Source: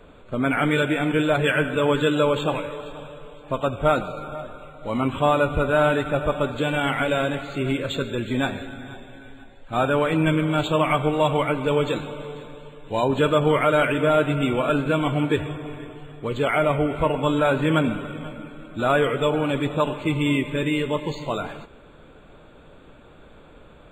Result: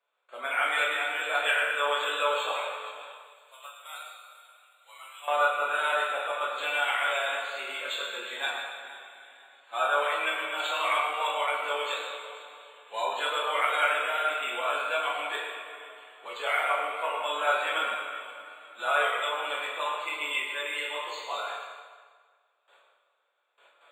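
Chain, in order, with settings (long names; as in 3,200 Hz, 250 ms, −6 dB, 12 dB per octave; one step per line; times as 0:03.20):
noise gate with hold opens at −36 dBFS
Bessel high-pass filter 980 Hz, order 4
0:03.12–0:05.28: first difference
convolution reverb RT60 1.6 s, pre-delay 7 ms, DRR −4.5 dB
level −5.5 dB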